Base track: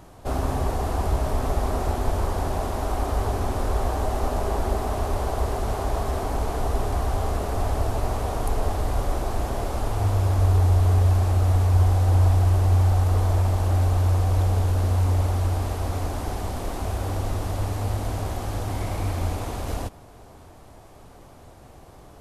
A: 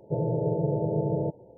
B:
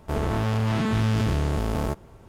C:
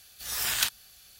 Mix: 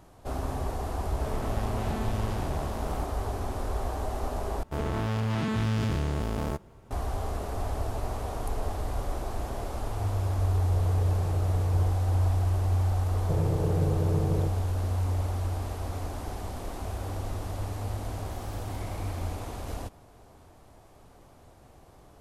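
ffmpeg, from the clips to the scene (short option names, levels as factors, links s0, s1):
-filter_complex "[2:a]asplit=2[s0][s1];[1:a]asplit=2[s2][s3];[0:a]volume=0.447[s4];[s3]equalizer=f=750:w=2.2:g=-14.5[s5];[3:a]acompressor=threshold=0.0112:ratio=6:attack=3.2:release=140:knee=1:detection=peak[s6];[s4]asplit=2[s7][s8];[s7]atrim=end=4.634[s9];[s1]atrim=end=2.28,asetpts=PTS-STARTPTS,volume=0.596[s10];[s8]atrim=start=6.906[s11];[s0]atrim=end=2.28,asetpts=PTS-STARTPTS,volume=0.282,afade=t=in:d=0.004:c=hsin,afade=t=out:st=2.276:d=0.004:c=hsin,adelay=1110[s12];[s2]atrim=end=1.57,asetpts=PTS-STARTPTS,volume=0.2,afade=t=in:d=0.004:c=hsin,afade=t=out:st=1.566:d=0.004:c=hsin,adelay=10610[s13];[s5]atrim=end=1.57,asetpts=PTS-STARTPTS,volume=0.841,afade=t=in:d=0.004:c=hsin,afade=t=out:st=1.566:d=0.004:c=hsin,adelay=13180[s14];[s6]atrim=end=1.19,asetpts=PTS-STARTPTS,volume=0.133,afade=t=in:d=0.004:c=hsin,afade=t=out:st=1.186:d=0.004:c=hsin,adelay=799092S[s15];[s9][s10]acrossfade=d=0.004:c1=hsin:c2=hsin[s16];[s16][s11]acrossfade=d=0.004:c1=hsin:c2=hsin[s17];[s17][s12][s13][s14][s15]amix=inputs=5:normalize=0"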